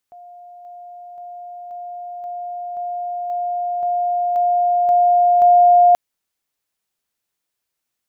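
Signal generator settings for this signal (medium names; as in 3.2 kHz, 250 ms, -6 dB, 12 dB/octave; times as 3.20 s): level ladder 707 Hz -37.5 dBFS, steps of 3 dB, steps 11, 0.53 s 0.00 s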